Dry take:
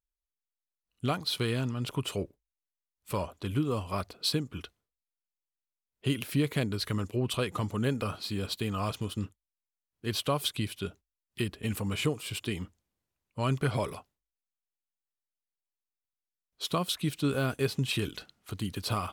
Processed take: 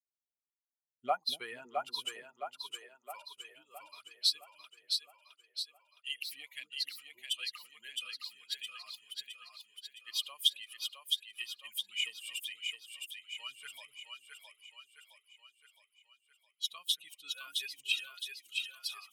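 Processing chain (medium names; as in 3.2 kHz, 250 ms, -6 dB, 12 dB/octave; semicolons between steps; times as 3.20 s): expander on every frequency bin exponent 2; high-pass sweep 530 Hz -> 3 kHz, 0.69–3.80 s; two-band feedback delay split 350 Hz, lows 240 ms, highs 664 ms, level -4 dB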